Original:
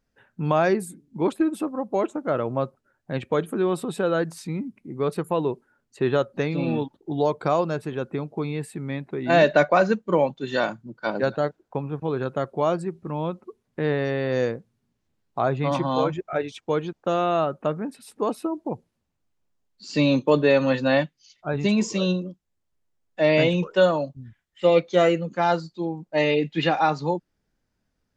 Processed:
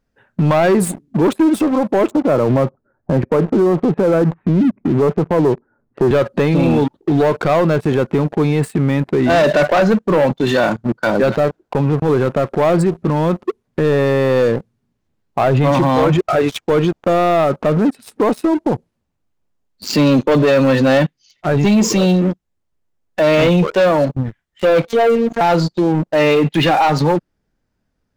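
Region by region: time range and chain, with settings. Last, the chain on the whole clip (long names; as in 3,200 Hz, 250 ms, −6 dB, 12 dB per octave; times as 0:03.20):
0:02.11–0:06.11: Gaussian smoothing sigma 5.9 samples + multiband upward and downward compressor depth 40%
0:24.87–0:25.41: phases set to zero 231 Hz + dynamic equaliser 530 Hz, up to +5 dB, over −30 dBFS, Q 1.7
whole clip: high-shelf EQ 2,200 Hz −5.5 dB; leveller curve on the samples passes 3; boost into a limiter +18 dB; level −7 dB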